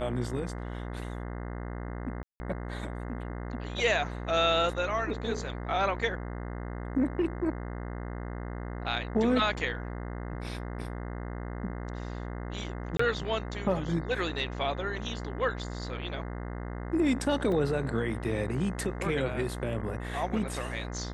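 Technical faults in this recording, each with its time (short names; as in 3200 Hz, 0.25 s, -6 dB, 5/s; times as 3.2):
buzz 60 Hz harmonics 35 -37 dBFS
2.23–2.4 gap 0.17 s
12.97–12.99 gap 24 ms
17.52 gap 2.4 ms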